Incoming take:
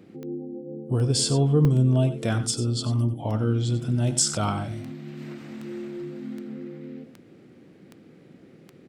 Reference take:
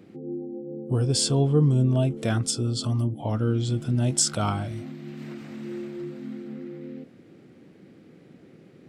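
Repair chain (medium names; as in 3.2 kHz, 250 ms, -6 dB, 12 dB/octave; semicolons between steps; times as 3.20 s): de-click; interpolate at 1.65 s, 1.6 ms; inverse comb 93 ms -12 dB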